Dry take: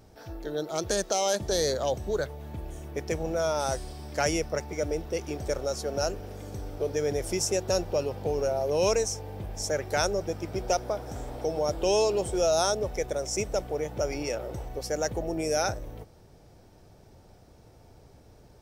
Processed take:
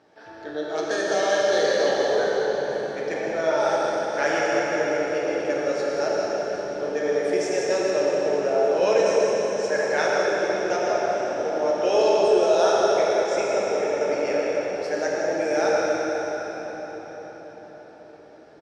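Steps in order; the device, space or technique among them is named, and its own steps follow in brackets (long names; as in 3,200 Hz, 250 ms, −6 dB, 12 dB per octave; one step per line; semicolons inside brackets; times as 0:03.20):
station announcement (band-pass filter 320–3,900 Hz; parametric band 1,700 Hz +9 dB 0.21 octaves; loudspeakers that aren't time-aligned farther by 40 metres −12 dB, 54 metres −9 dB, 65 metres −11 dB; convolution reverb RT60 5.4 s, pre-delay 3 ms, DRR −5 dB)
0:07.91–0:08.65: Bessel low-pass filter 9,800 Hz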